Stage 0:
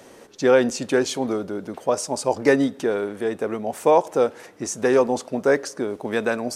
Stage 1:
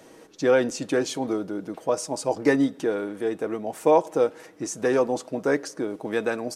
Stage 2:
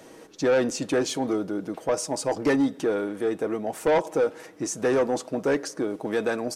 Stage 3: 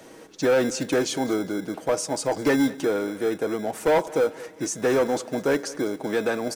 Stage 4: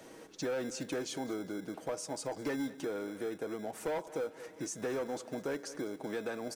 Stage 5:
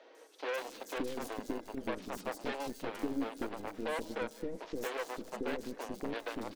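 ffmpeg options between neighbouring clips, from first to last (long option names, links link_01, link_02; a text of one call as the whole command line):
ffmpeg -i in.wav -af "equalizer=frequency=290:width=1.9:gain=4,aecho=1:1:6.3:0.37,volume=-4.5dB" out.wav
ffmpeg -i in.wav -af "asoftclip=type=tanh:threshold=-18dB,volume=2dB" out.wav
ffmpeg -i in.wav -filter_complex "[0:a]acrossover=split=310[link_01][link_02];[link_01]acrusher=samples=24:mix=1:aa=0.000001[link_03];[link_03][link_02]amix=inputs=2:normalize=0,aecho=1:1:203|406|609:0.1|0.042|0.0176,volume=1.5dB" out.wav
ffmpeg -i in.wav -af "acompressor=threshold=-34dB:ratio=2,volume=-6dB" out.wav
ffmpeg -i in.wav -filter_complex "[0:a]aeval=exprs='0.0596*(cos(1*acos(clip(val(0)/0.0596,-1,1)))-cos(1*PI/2))+0.015*(cos(4*acos(clip(val(0)/0.0596,-1,1)))-cos(4*PI/2))+0.0168*(cos(7*acos(clip(val(0)/0.0596,-1,1)))-cos(7*PI/2))':channel_layout=same,equalizer=frequency=125:width_type=o:width=1:gain=-9,equalizer=frequency=250:width_type=o:width=1:gain=8,equalizer=frequency=500:width_type=o:width=1:gain=5,equalizer=frequency=4000:width_type=o:width=1:gain=4,acrossover=split=430|4500[link_01][link_02][link_03];[link_03]adelay=150[link_04];[link_01]adelay=570[link_05];[link_05][link_02][link_04]amix=inputs=3:normalize=0,volume=-4.5dB" out.wav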